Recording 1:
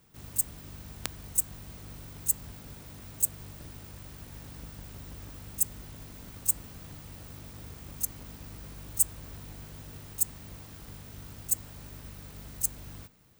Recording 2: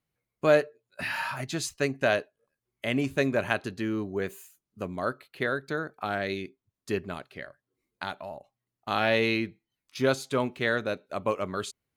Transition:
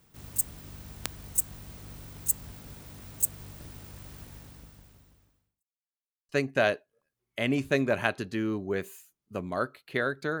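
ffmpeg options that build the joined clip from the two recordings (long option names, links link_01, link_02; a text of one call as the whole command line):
ffmpeg -i cue0.wav -i cue1.wav -filter_complex "[0:a]apad=whole_dur=10.4,atrim=end=10.4,asplit=2[link_01][link_02];[link_01]atrim=end=5.66,asetpts=PTS-STARTPTS,afade=type=out:start_time=4.2:duration=1.46:curve=qua[link_03];[link_02]atrim=start=5.66:end=6.29,asetpts=PTS-STARTPTS,volume=0[link_04];[1:a]atrim=start=1.75:end=5.86,asetpts=PTS-STARTPTS,afade=type=in:duration=0.004:curve=hsin[link_05];[link_03][link_04][link_05]concat=n=3:v=0:a=1" out.wav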